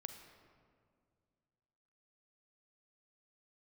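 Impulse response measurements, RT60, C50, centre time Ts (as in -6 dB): 2.1 s, 7.0 dB, 32 ms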